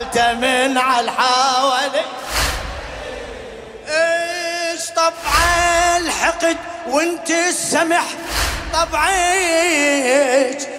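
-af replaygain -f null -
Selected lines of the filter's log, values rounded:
track_gain = -1.7 dB
track_peak = 0.605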